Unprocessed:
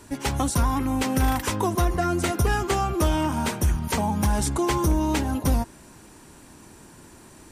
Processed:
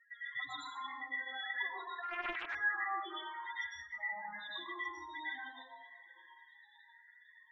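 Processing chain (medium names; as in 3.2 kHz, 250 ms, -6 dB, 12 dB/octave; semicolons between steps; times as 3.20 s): reverb removal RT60 0.64 s; on a send: echo that smears into a reverb 593 ms, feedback 58%, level -16 dB; on the sum: compression 12:1, threshold -27 dBFS, peak gain reduction 11 dB; two resonant band-passes 2.6 kHz, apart 0.85 oct; saturation -39.5 dBFS, distortion -13 dB; in parallel at -7.5 dB: word length cut 8-bit, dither none; on the sum: loudest bins only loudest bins 4; reverb removal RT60 1.8 s; plate-style reverb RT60 0.81 s, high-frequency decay 0.6×, pre-delay 90 ms, DRR -8 dB; 2.03–2.55 s: loudspeaker Doppler distortion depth 0.39 ms; trim +3.5 dB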